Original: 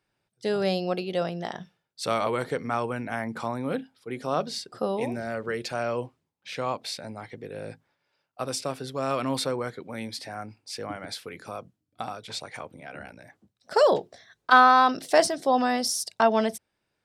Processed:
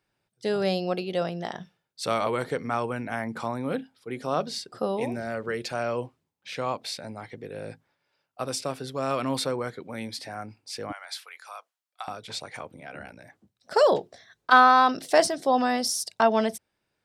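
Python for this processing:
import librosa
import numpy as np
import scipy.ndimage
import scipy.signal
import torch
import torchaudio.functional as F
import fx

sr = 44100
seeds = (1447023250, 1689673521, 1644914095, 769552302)

y = fx.highpass(x, sr, hz=830.0, slope=24, at=(10.92, 12.08))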